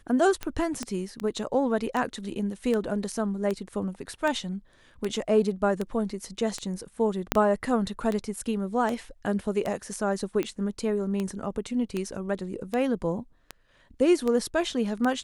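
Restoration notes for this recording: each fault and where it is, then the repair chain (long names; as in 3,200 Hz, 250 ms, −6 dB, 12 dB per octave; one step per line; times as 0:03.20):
scratch tick 78 rpm −16 dBFS
0:00.83: click −17 dBFS
0:07.32: click −5 dBFS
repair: click removal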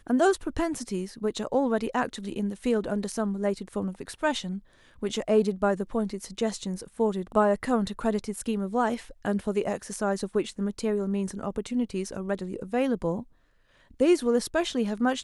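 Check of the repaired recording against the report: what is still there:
0:00.83: click
0:07.32: click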